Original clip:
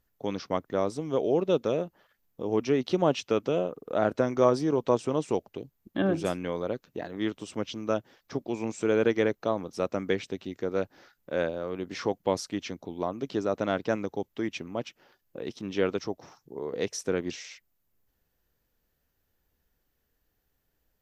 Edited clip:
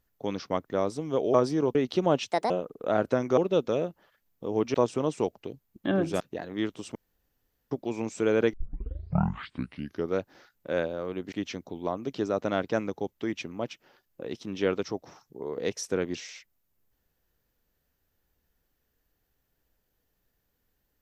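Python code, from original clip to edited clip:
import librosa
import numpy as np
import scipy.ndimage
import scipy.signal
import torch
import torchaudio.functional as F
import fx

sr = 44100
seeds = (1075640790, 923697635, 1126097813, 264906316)

y = fx.edit(x, sr, fx.swap(start_s=1.34, length_s=1.37, other_s=4.44, other_length_s=0.41),
    fx.speed_span(start_s=3.27, length_s=0.3, speed=1.56),
    fx.cut(start_s=6.31, length_s=0.52),
    fx.room_tone_fill(start_s=7.58, length_s=0.76),
    fx.tape_start(start_s=9.16, length_s=1.65),
    fx.cut(start_s=11.95, length_s=0.53), tone=tone)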